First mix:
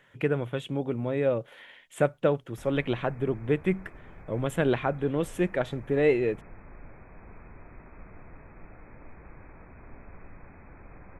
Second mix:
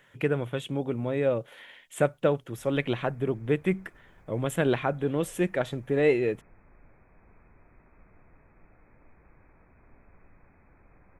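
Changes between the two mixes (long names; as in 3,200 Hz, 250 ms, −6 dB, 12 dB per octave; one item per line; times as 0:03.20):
background −10.0 dB
master: add high-shelf EQ 5,700 Hz +7 dB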